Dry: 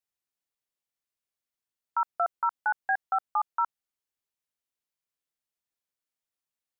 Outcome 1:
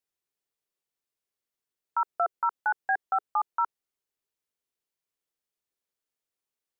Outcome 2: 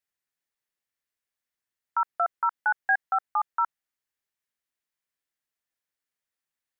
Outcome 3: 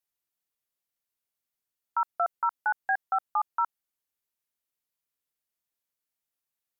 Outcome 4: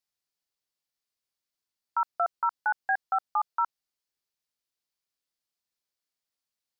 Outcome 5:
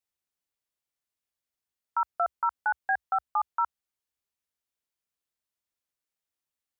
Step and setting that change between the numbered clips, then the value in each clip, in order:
peaking EQ, frequency: 410 Hz, 1.8 kHz, 14 kHz, 4.7 kHz, 66 Hz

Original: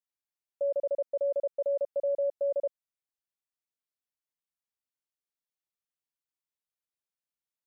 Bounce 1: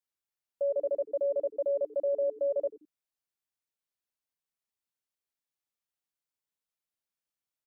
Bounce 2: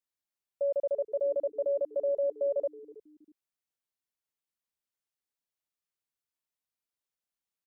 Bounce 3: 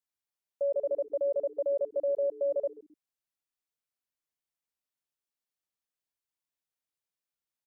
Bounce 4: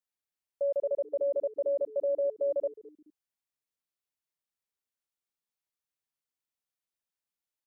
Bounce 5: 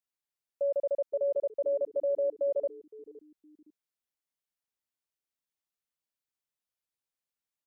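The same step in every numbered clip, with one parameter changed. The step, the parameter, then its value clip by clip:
frequency-shifting echo, time: 88 ms, 322 ms, 132 ms, 213 ms, 514 ms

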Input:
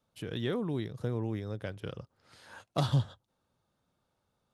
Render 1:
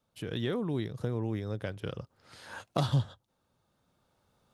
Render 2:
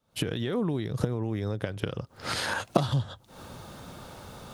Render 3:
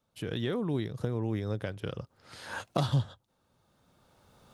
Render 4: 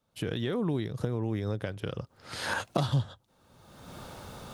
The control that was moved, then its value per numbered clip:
recorder AGC, rising by: 5.4 dB/s, 86 dB/s, 13 dB/s, 35 dB/s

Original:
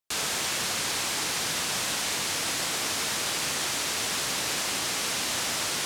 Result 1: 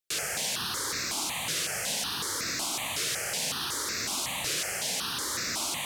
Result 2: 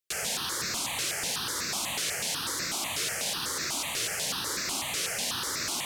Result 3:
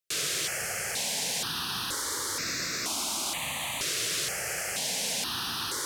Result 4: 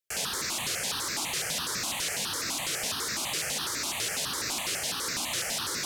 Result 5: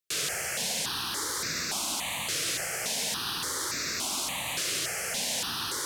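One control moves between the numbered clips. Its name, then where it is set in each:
stepped phaser, rate: 5.4 Hz, 8.1 Hz, 2.1 Hz, 12 Hz, 3.5 Hz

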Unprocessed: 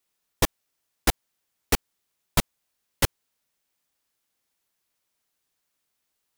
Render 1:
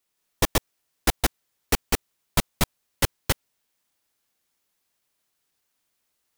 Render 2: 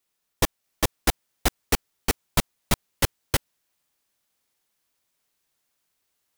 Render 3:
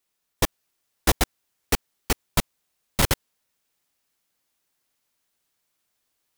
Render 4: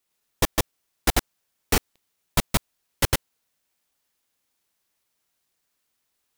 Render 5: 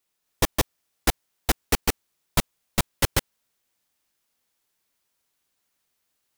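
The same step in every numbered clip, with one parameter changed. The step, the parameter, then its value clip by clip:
chunks repeated in reverse, time: 167 ms, 639 ms, 385 ms, 103 ms, 259 ms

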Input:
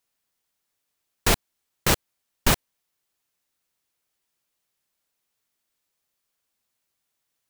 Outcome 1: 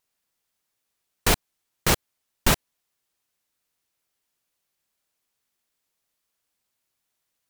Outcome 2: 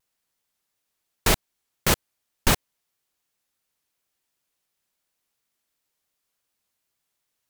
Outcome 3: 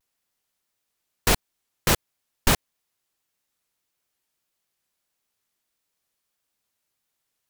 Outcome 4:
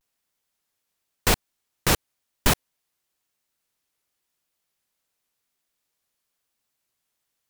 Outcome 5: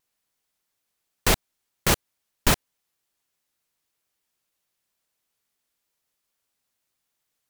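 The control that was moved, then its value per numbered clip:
vibrato, rate: 16 Hz, 2.8 Hz, 1.6 Hz, 0.95 Hz, 6.5 Hz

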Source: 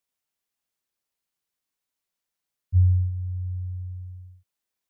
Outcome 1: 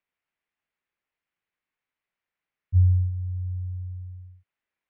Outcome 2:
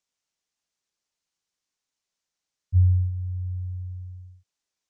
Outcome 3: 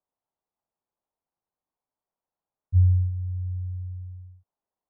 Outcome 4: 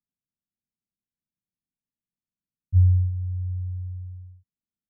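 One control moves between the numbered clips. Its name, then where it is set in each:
resonant low-pass, frequency: 2.2 kHz, 6.4 kHz, 860 Hz, 210 Hz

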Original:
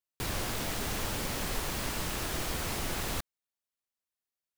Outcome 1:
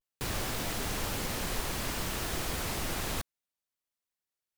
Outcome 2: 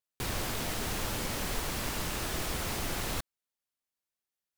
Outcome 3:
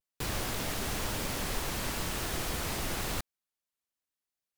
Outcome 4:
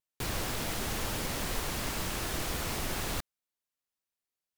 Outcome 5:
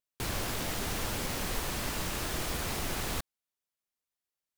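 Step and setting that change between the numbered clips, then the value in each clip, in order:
vibrato, rate: 0.58 Hz, 14 Hz, 1 Hz, 4.5 Hz, 8.4 Hz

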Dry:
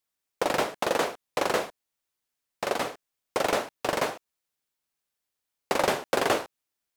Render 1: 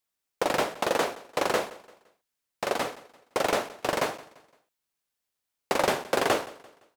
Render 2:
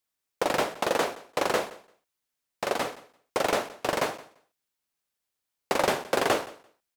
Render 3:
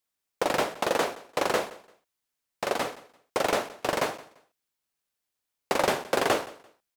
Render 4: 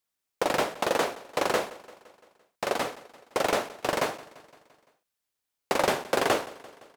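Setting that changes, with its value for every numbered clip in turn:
feedback delay, feedback: 38%, 15%, 24%, 59%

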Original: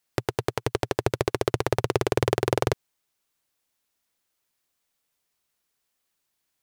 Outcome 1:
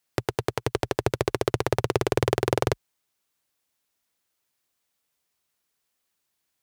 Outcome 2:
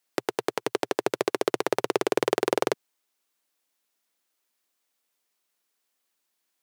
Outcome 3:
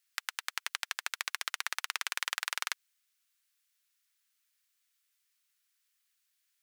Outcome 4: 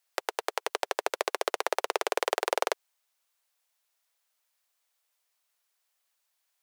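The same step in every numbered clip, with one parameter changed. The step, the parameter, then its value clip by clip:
high-pass, cutoff frequency: 40 Hz, 210 Hz, 1.4 kHz, 540 Hz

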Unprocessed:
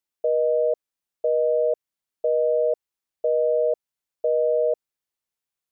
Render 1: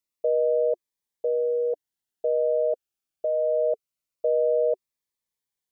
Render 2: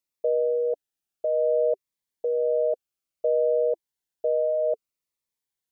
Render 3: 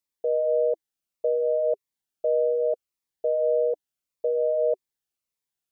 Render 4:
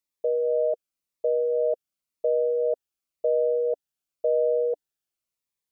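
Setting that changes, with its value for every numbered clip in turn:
Shepard-style phaser, rate: 0.23 Hz, 0.6 Hz, 1.7 Hz, 0.93 Hz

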